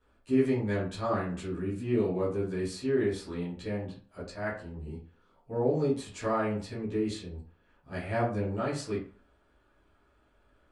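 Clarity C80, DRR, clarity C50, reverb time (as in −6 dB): 11.0 dB, −11.5 dB, 5.5 dB, 0.45 s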